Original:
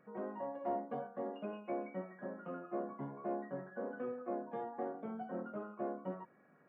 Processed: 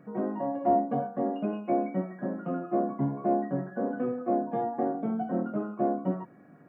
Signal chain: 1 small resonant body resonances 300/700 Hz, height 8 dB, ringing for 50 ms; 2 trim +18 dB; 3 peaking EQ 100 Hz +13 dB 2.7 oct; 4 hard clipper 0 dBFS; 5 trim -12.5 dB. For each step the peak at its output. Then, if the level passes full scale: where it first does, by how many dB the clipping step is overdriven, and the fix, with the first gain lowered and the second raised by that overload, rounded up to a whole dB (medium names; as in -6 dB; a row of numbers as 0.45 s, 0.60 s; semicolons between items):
-22.0 dBFS, -4.0 dBFS, -1.5 dBFS, -1.5 dBFS, -14.0 dBFS; nothing clips